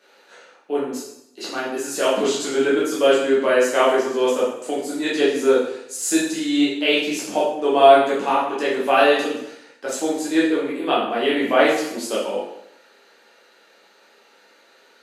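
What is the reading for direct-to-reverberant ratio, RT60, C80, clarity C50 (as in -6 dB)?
-7.5 dB, 0.80 s, 6.0 dB, 2.0 dB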